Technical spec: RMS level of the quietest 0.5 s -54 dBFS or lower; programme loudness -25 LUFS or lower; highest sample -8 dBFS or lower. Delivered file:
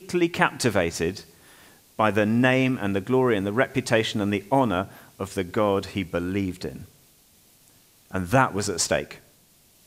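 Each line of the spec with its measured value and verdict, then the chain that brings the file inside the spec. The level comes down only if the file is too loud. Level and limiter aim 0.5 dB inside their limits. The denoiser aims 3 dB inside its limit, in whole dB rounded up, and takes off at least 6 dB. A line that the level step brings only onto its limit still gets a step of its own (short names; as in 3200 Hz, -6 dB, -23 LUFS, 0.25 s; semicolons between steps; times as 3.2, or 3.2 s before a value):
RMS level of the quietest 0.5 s -58 dBFS: OK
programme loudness -24.0 LUFS: fail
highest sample -2.5 dBFS: fail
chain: gain -1.5 dB; limiter -8.5 dBFS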